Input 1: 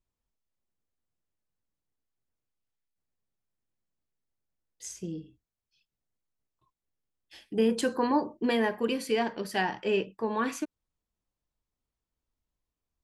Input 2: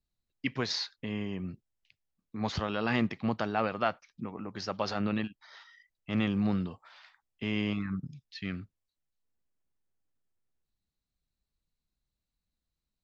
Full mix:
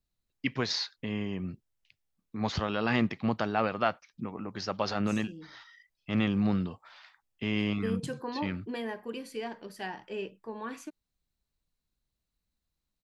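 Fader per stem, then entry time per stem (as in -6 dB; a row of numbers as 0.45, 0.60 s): -9.5, +1.5 dB; 0.25, 0.00 s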